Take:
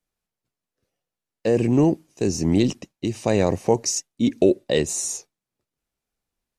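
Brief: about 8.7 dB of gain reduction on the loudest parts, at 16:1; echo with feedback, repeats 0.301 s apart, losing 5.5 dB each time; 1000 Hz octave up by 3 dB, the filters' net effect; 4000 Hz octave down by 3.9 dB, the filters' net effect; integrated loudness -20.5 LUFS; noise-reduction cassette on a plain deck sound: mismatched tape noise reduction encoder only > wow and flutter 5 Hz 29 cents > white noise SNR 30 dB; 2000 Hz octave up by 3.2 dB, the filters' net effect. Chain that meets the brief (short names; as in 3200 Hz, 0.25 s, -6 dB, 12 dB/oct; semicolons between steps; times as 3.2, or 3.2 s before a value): bell 1000 Hz +3.5 dB; bell 2000 Hz +5 dB; bell 4000 Hz -7.5 dB; compressor 16:1, threshold -19 dBFS; feedback echo 0.301 s, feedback 53%, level -5.5 dB; mismatched tape noise reduction encoder only; wow and flutter 5 Hz 29 cents; white noise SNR 30 dB; gain +5.5 dB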